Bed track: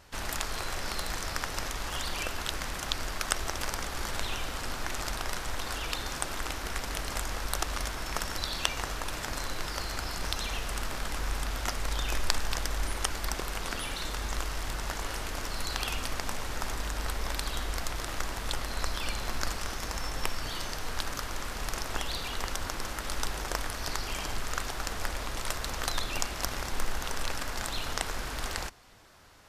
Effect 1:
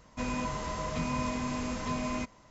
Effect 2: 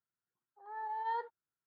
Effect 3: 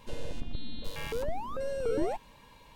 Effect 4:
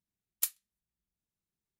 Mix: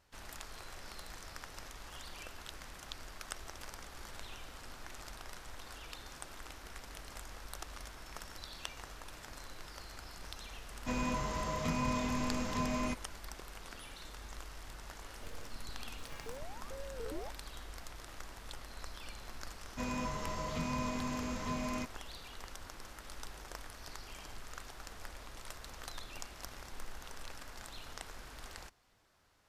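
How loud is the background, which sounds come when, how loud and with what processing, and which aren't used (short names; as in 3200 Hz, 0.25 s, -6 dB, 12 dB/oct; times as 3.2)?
bed track -14.5 dB
10.69 add 1 -2 dB
15.14 add 3 -13.5 dB + tracing distortion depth 0.15 ms
19.6 add 1 -4.5 dB
not used: 2, 4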